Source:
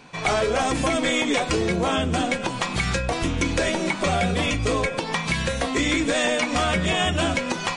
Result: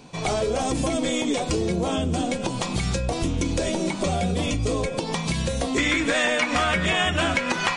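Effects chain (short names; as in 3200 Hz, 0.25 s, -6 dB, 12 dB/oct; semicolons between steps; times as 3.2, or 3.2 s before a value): bell 1700 Hz -11.5 dB 1.7 oct, from 5.78 s +6 dB; compressor 2.5:1, threshold -26 dBFS, peak gain reduction 7.5 dB; gain +4 dB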